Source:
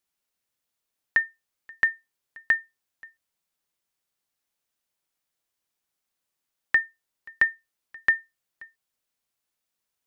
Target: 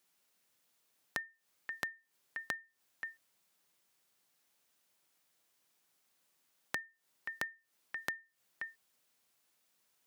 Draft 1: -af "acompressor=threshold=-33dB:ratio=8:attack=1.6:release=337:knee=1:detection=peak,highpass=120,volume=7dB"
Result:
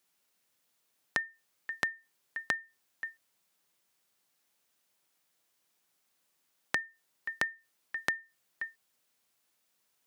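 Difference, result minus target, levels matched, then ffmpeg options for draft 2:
downward compressor: peak gain reduction −7.5 dB
-af "acompressor=threshold=-41.5dB:ratio=8:attack=1.6:release=337:knee=1:detection=peak,highpass=120,volume=7dB"

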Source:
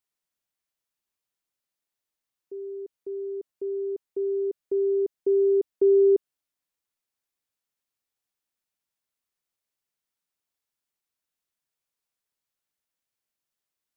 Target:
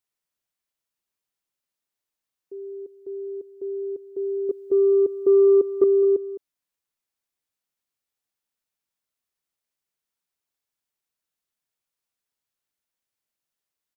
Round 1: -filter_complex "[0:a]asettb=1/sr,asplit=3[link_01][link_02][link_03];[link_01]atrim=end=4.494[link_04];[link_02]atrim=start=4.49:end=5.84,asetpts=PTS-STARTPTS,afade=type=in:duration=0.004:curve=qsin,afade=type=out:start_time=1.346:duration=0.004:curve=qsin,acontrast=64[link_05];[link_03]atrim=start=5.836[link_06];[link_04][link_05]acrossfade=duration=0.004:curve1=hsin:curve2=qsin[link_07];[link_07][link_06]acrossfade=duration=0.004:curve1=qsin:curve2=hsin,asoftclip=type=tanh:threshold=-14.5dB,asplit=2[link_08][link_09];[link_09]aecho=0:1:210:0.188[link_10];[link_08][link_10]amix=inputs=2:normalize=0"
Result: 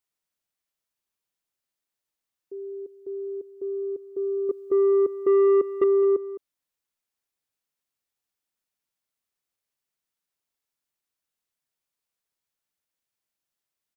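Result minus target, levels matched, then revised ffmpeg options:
soft clipping: distortion +18 dB
-filter_complex "[0:a]asettb=1/sr,asplit=3[link_01][link_02][link_03];[link_01]atrim=end=4.494[link_04];[link_02]atrim=start=4.49:end=5.84,asetpts=PTS-STARTPTS,afade=type=in:duration=0.004:curve=qsin,afade=type=out:start_time=1.346:duration=0.004:curve=qsin,acontrast=64[link_05];[link_03]atrim=start=5.836[link_06];[link_04][link_05]acrossfade=duration=0.004:curve1=hsin:curve2=qsin[link_07];[link_07][link_06]acrossfade=duration=0.004:curve1=qsin:curve2=hsin,asoftclip=type=tanh:threshold=-3.5dB,asplit=2[link_08][link_09];[link_09]aecho=0:1:210:0.188[link_10];[link_08][link_10]amix=inputs=2:normalize=0"

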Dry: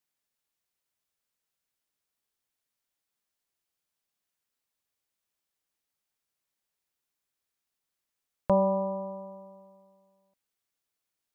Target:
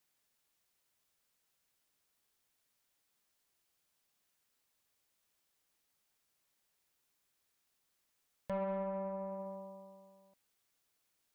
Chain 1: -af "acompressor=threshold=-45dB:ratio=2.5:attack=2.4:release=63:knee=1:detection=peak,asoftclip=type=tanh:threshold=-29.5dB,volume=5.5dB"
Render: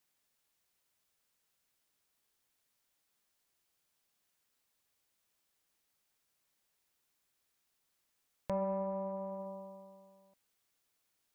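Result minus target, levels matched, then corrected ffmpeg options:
soft clipping: distortion −8 dB
-af "acompressor=threshold=-45dB:ratio=2.5:attack=2.4:release=63:knee=1:detection=peak,asoftclip=type=tanh:threshold=-37dB,volume=5.5dB"

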